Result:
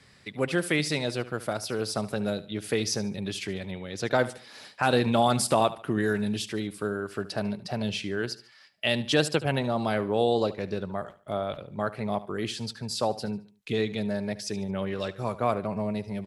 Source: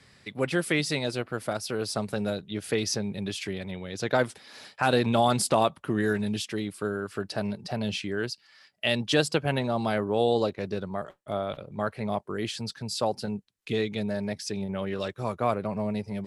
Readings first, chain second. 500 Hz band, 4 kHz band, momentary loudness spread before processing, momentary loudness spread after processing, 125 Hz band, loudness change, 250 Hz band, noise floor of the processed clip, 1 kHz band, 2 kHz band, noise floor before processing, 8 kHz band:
0.0 dB, 0.0 dB, 10 LU, 10 LU, 0.0 dB, 0.0 dB, 0.0 dB, -56 dBFS, 0.0 dB, 0.0 dB, -59 dBFS, 0.0 dB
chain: feedback echo 73 ms, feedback 35%, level -16.5 dB

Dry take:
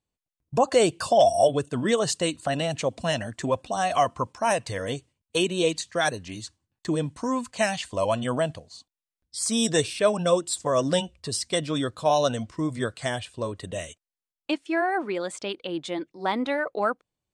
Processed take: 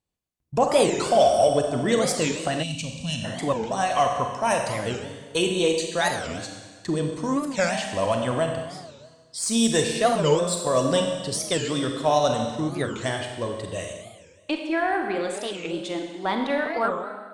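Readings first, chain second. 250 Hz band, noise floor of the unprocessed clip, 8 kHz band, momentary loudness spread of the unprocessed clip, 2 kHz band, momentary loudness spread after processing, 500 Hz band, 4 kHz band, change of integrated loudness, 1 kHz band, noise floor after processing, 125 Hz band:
+2.0 dB, under -85 dBFS, +2.0 dB, 11 LU, +1.5 dB, 11 LU, +1.5 dB, +1.5 dB, +1.5 dB, +2.0 dB, -52 dBFS, +2.0 dB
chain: Schroeder reverb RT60 1.5 s, combs from 31 ms, DRR 3 dB; added harmonics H 8 -36 dB, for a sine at -7 dBFS; spectral gain 2.63–3.24, 280–2200 Hz -18 dB; record warp 45 rpm, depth 250 cents

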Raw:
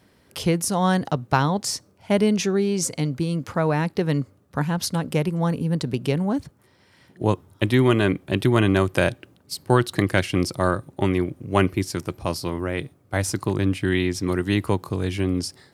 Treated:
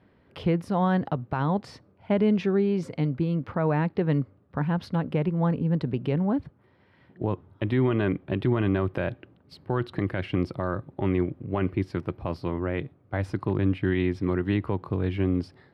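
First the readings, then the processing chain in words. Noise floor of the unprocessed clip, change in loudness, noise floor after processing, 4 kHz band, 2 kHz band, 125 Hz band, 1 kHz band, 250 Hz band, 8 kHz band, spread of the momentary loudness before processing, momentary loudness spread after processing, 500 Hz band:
-59 dBFS, -4.0 dB, -61 dBFS, -13.5 dB, -8.0 dB, -3.0 dB, -6.0 dB, -3.0 dB, under -25 dB, 8 LU, 7 LU, -4.5 dB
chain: limiter -12.5 dBFS, peak gain reduction 9.5 dB; air absorption 420 m; gain -1 dB

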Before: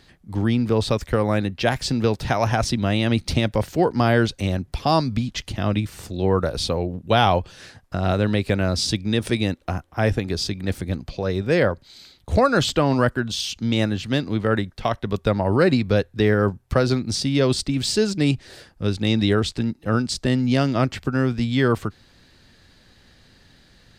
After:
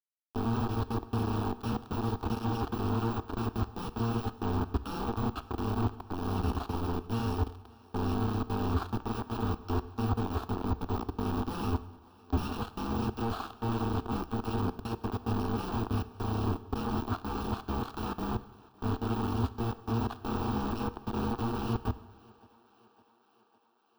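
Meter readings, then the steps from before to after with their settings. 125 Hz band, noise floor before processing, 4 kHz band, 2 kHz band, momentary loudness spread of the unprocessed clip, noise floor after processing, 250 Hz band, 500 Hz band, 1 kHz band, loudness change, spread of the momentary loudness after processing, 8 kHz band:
-10.0 dB, -56 dBFS, -19.0 dB, -18.0 dB, 7 LU, -66 dBFS, -10.5 dB, -15.5 dB, -9.0 dB, -11.5 dB, 4 LU, -20.5 dB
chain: FFT order left unsorted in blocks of 128 samples; de-esser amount 95%; HPF 79 Hz 24 dB/oct; reverse; compressor 4:1, threshold -40 dBFS, peak gain reduction 19 dB; reverse; phaser 1.7 Hz, delay 2.6 ms, feedback 26%; companded quantiser 2-bit; air absorption 390 m; fixed phaser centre 550 Hz, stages 6; thinning echo 0.557 s, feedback 68%, high-pass 240 Hz, level -23.5 dB; plate-style reverb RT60 1 s, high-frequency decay 0.85×, DRR 13.5 dB; gain +8.5 dB

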